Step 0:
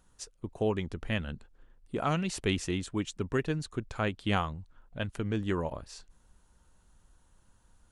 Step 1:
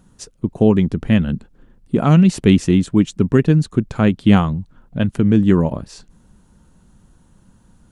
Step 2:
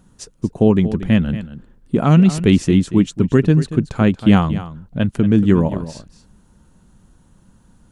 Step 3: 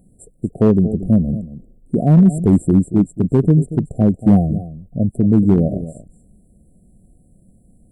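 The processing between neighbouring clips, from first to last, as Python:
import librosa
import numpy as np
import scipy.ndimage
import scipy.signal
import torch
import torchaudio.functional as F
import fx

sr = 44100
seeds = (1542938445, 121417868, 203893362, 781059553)

y1 = fx.peak_eq(x, sr, hz=190.0, db=14.5, octaves=1.9)
y1 = y1 * 10.0 ** (7.5 / 20.0)
y2 = y1 + 10.0 ** (-13.5 / 20.0) * np.pad(y1, (int(232 * sr / 1000.0), 0))[:len(y1)]
y3 = fx.brickwall_bandstop(y2, sr, low_hz=760.0, high_hz=7300.0)
y3 = np.clip(10.0 ** (6.0 / 20.0) * y3, -1.0, 1.0) / 10.0 ** (6.0 / 20.0)
y3 = fx.hpss(y3, sr, part='percussive', gain_db=-3)
y3 = y3 * 10.0 ** (1.5 / 20.0)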